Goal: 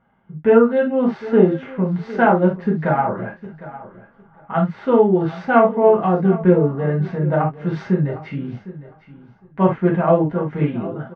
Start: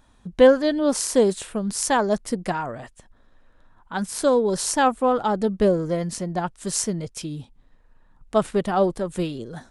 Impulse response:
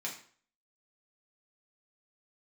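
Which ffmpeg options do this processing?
-filter_complex "[1:a]atrim=start_sample=2205,atrim=end_sample=3087[a];[0:a][a]afir=irnorm=-1:irlink=0,dynaudnorm=f=140:g=5:m=8dB,lowpass=f=2.4k:w=0.5412,lowpass=f=2.4k:w=1.3066,asetrate=38367,aresample=44100,aecho=1:1:757|1514:0.15|0.0269"

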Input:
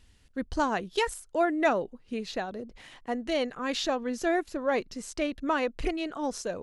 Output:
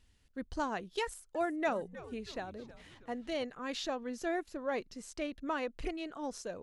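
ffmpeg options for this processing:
-filter_complex "[0:a]asettb=1/sr,asplit=3[a][b][c];[a]atrim=end=1.034[d];[b]atrim=start=1.03:end=3.44,asetpts=PTS-STARTPTS,afade=t=in:d=0.004:c=qsin,afade=t=out:st=2.406:d=0.004:c=qsin,asplit=6[e][f][g][h][i][j];[f]adelay=317,afreqshift=-130,volume=-16dB[k];[g]adelay=634,afreqshift=-260,volume=-21.8dB[l];[h]adelay=951,afreqshift=-390,volume=-27.7dB[m];[i]adelay=1268,afreqshift=-520,volume=-33.5dB[n];[j]adelay=1585,afreqshift=-650,volume=-39.4dB[o];[e][k][l][m][n][o]amix=inputs=6:normalize=0,atrim=end_sample=106281[p];[c]atrim=start=3.436[q];[d][p]acrossfade=d=0.004:c1=hsin:c2=qsin[r];[r][q]acrossfade=d=0.004:c1=qsin:c2=hsin,volume=-8dB"

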